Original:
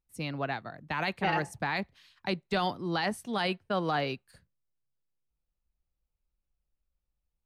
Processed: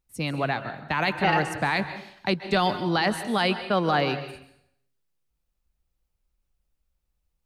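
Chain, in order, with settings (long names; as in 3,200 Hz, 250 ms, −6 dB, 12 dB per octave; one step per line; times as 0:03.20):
dense smooth reverb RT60 0.69 s, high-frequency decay 0.95×, pre-delay 120 ms, DRR 10.5 dB
level +6.5 dB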